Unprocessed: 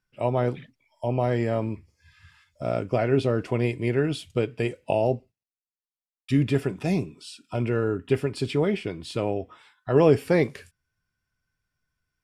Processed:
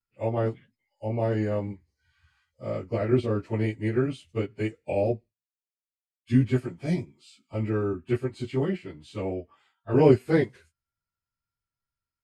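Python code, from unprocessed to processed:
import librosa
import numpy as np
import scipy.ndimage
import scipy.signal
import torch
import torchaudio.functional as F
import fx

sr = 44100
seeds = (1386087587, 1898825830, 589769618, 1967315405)

y = fx.pitch_bins(x, sr, semitones=-1.5)
y = fx.upward_expand(y, sr, threshold_db=-39.0, expansion=1.5)
y = F.gain(torch.from_numpy(y), 3.0).numpy()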